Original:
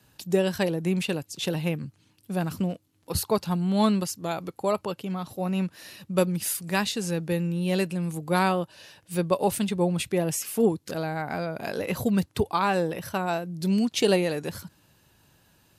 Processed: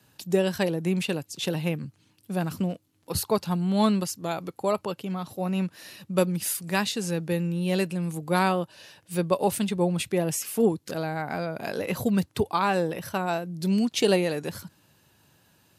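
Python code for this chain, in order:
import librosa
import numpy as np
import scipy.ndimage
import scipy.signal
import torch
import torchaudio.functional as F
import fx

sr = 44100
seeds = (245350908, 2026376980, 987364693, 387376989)

y = scipy.signal.sosfilt(scipy.signal.butter(2, 81.0, 'highpass', fs=sr, output='sos'), x)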